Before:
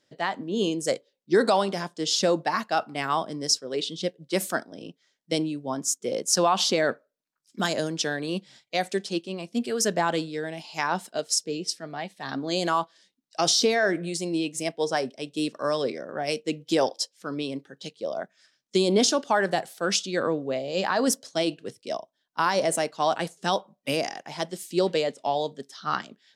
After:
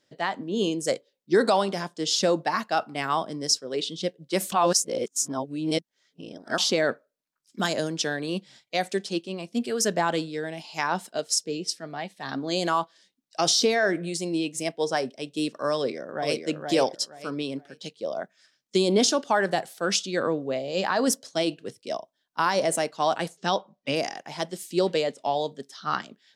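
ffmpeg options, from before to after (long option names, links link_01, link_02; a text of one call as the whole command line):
ffmpeg -i in.wav -filter_complex "[0:a]asplit=2[link_01][link_02];[link_02]afade=type=in:start_time=15.75:duration=0.01,afade=type=out:start_time=16.47:duration=0.01,aecho=0:1:470|940|1410:0.630957|0.157739|0.0394348[link_03];[link_01][link_03]amix=inputs=2:normalize=0,asplit=3[link_04][link_05][link_06];[link_04]afade=type=out:start_time=23.36:duration=0.02[link_07];[link_05]lowpass=frequency=6500:width=0.5412,lowpass=frequency=6500:width=1.3066,afade=type=in:start_time=23.36:duration=0.02,afade=type=out:start_time=23.95:duration=0.02[link_08];[link_06]afade=type=in:start_time=23.95:duration=0.02[link_09];[link_07][link_08][link_09]amix=inputs=3:normalize=0,asplit=3[link_10][link_11][link_12];[link_10]atrim=end=4.522[link_13];[link_11]atrim=start=4.518:end=6.582,asetpts=PTS-STARTPTS,areverse[link_14];[link_12]atrim=start=6.578[link_15];[link_13][link_14]acrossfade=duration=0.004:curve1=hsin:curve2=hsin[link_16];[link_16][link_15]acrossfade=duration=0.004:curve1=hsin:curve2=hsin" out.wav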